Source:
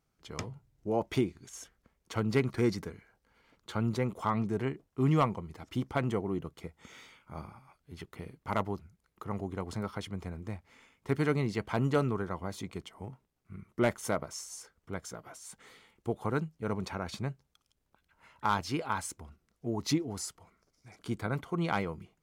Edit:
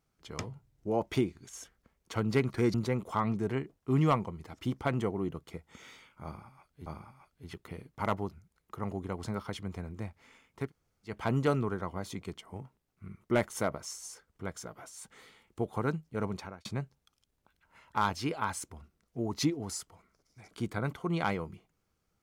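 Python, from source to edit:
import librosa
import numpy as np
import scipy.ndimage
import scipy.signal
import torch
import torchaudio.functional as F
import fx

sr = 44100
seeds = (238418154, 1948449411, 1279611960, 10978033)

y = fx.edit(x, sr, fx.cut(start_s=2.74, length_s=1.1),
    fx.repeat(start_s=7.34, length_s=0.62, count=2),
    fx.room_tone_fill(start_s=11.12, length_s=0.47, crossfade_s=0.16),
    fx.fade_out_span(start_s=16.77, length_s=0.36), tone=tone)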